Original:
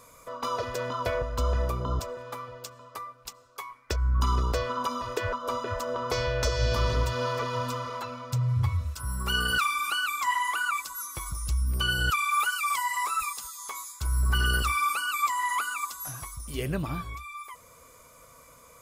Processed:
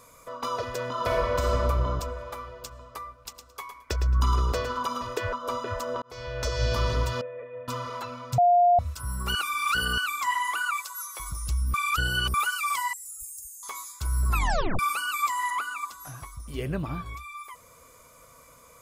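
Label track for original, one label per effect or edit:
0.900000	1.510000	thrown reverb, RT60 2.8 s, DRR −3.5 dB
2.130000	2.640000	low-shelf EQ 240 Hz −6 dB
3.230000	5.070000	repeating echo 110 ms, feedback 20%, level −8 dB
6.020000	6.620000	fade in
7.210000	7.680000	formant resonators in series e
8.380000	8.790000	beep over 705 Hz −15.5 dBFS
9.350000	9.980000	reverse
10.620000	11.200000	high-pass filter 460 Hz 24 dB per octave
11.740000	12.340000	reverse
12.930000	13.630000	elliptic band-stop filter 100–7,300 Hz
14.290000	14.290000	tape stop 0.50 s
15.500000	17.060000	high-shelf EQ 3,900 Hz −9 dB

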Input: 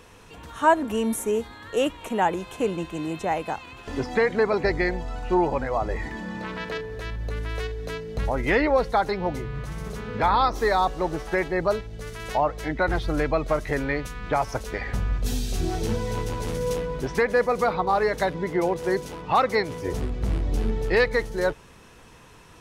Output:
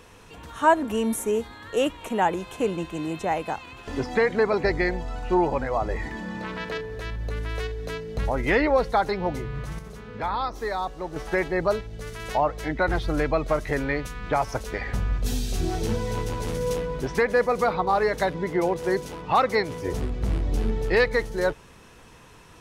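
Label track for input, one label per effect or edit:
9.790000	11.160000	clip gain −7 dB

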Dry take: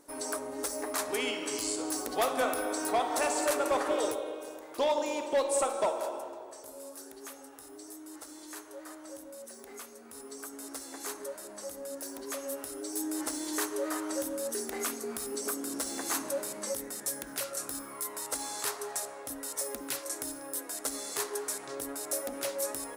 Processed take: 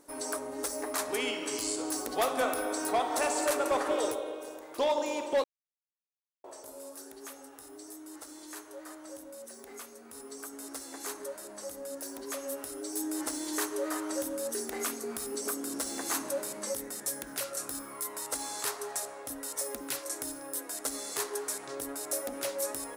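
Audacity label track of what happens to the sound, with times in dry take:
5.440000	6.440000	silence

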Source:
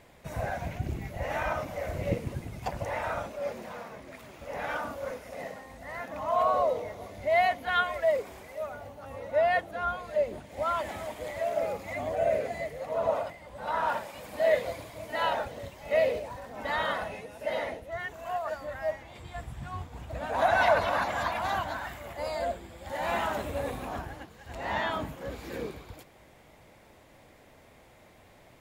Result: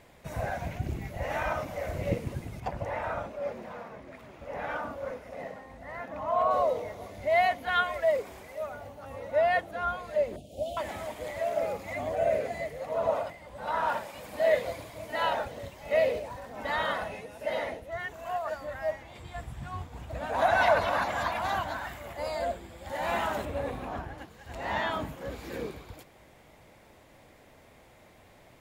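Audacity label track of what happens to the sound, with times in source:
2.600000	6.510000	high-shelf EQ 3,700 Hz −11.5 dB
10.360000	10.770000	elliptic band-stop filter 680–2,900 Hz
23.450000	24.180000	high-shelf EQ 5,100 Hz −11 dB

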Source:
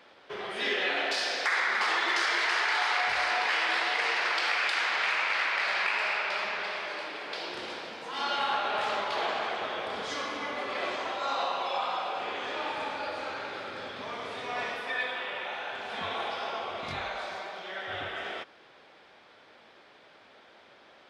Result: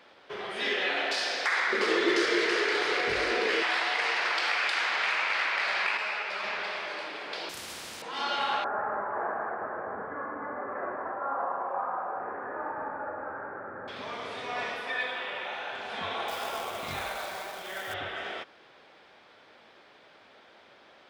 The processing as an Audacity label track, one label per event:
1.720000	3.630000	low shelf with overshoot 580 Hz +10.5 dB, Q 3
5.970000	6.440000	string-ensemble chorus
7.490000	8.020000	every bin compressed towards the loudest bin 4 to 1
8.640000	13.880000	Chebyshev low-pass filter 1,700 Hz, order 5
16.280000	17.940000	log-companded quantiser 4 bits

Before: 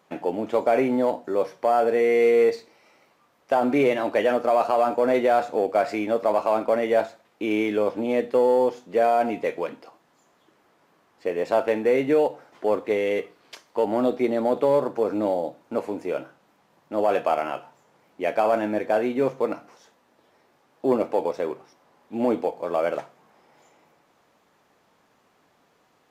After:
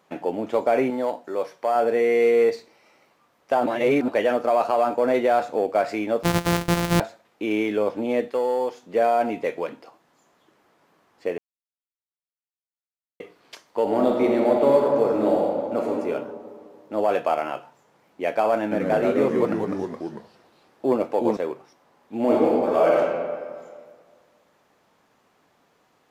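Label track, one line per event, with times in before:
0.900000	1.760000	low-shelf EQ 370 Hz −8.5 dB
3.660000	4.080000	reverse
6.230000	7.000000	samples sorted by size in blocks of 256 samples
8.280000	8.830000	low-shelf EQ 440 Hz −10 dB
11.380000	13.200000	silence
13.810000	15.920000	thrown reverb, RT60 2.2 s, DRR −0.5 dB
18.620000	21.370000	delay with pitch and tempo change per echo 92 ms, each echo −2 semitones, echoes 3
22.220000	22.990000	thrown reverb, RT60 1.8 s, DRR −4.5 dB

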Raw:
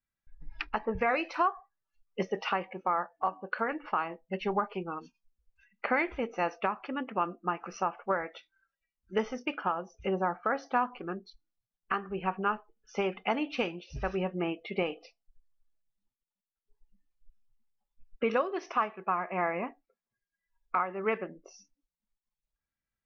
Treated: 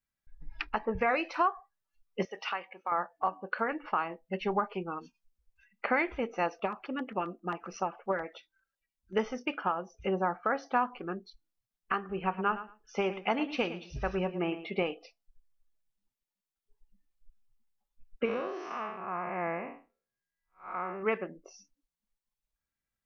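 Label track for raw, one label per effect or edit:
2.250000	2.920000	high-pass filter 1,400 Hz 6 dB per octave
6.460000	9.160000	auto-filter notch saw down 7.5 Hz 650–2,900 Hz
11.980000	14.880000	repeating echo 111 ms, feedback 17%, level −13 dB
18.250000	21.030000	spectrum smeared in time width 185 ms

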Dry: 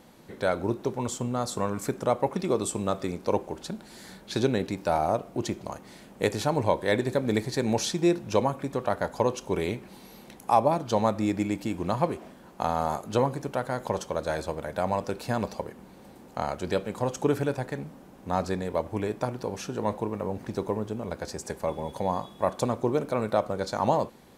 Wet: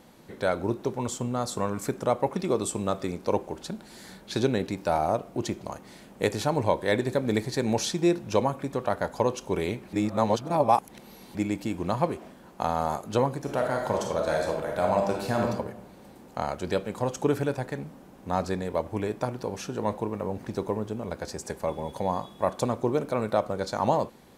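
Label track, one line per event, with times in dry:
9.930000	11.350000	reverse
13.400000	15.510000	thrown reverb, RT60 0.83 s, DRR 0.5 dB

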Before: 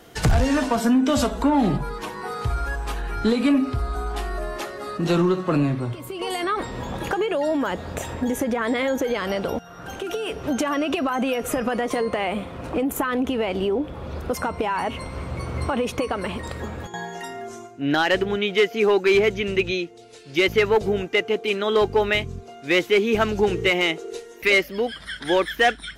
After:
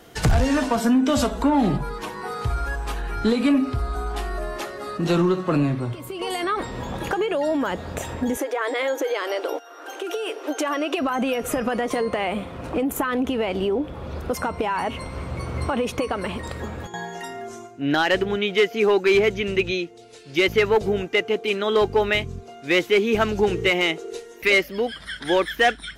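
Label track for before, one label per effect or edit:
8.370000	10.990000	linear-phase brick-wall high-pass 280 Hz

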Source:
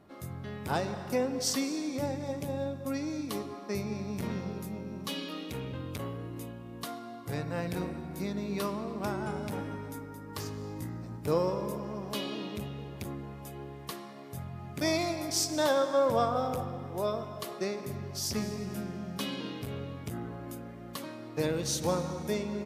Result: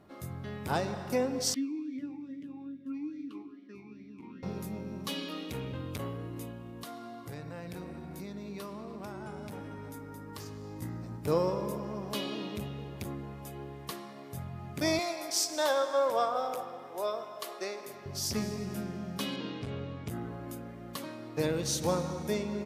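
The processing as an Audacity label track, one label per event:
1.540000	4.430000	formant filter swept between two vowels i-u 2.4 Hz
6.690000	10.820000	downward compressor 3 to 1, threshold −40 dBFS
14.990000	18.060000	high-pass filter 470 Hz
19.360000	20.080000	Bessel low-pass filter 5,700 Hz, order 4

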